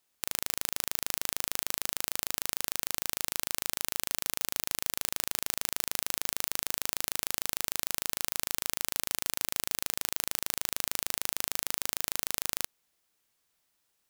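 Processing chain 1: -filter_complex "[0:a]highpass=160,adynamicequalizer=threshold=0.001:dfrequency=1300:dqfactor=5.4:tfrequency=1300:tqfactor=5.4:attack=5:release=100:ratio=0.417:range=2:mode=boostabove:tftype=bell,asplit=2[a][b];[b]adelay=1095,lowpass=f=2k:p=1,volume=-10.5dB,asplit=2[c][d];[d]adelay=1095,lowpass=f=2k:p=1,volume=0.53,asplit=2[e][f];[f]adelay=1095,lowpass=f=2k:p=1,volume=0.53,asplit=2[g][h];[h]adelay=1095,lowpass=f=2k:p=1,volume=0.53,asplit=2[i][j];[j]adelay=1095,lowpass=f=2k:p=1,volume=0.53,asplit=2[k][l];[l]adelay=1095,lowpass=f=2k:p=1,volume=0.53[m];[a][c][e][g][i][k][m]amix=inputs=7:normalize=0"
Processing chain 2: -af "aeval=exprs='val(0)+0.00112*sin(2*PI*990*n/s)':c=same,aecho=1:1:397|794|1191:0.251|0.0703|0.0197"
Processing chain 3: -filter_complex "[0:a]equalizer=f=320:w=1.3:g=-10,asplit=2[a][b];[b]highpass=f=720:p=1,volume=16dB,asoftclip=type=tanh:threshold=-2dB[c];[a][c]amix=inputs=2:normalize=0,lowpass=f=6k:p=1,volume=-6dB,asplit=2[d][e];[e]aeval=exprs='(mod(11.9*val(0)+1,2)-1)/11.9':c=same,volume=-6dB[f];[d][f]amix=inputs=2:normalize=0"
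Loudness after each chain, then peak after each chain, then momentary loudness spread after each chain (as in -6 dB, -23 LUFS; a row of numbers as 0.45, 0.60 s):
-31.5, -31.0, -33.5 LUFS; -2.5, -2.0, -7.5 dBFS; 0, 0, 0 LU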